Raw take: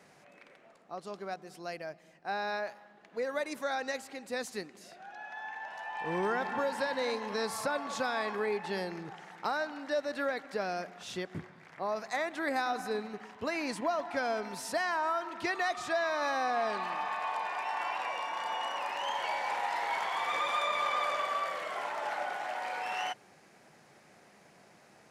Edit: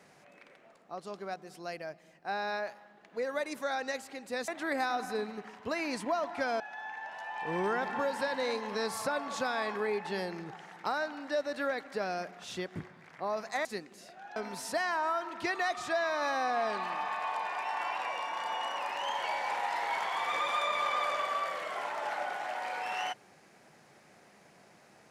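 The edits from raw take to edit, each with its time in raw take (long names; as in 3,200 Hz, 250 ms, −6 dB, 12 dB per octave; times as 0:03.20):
0:04.48–0:05.19: swap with 0:12.24–0:14.36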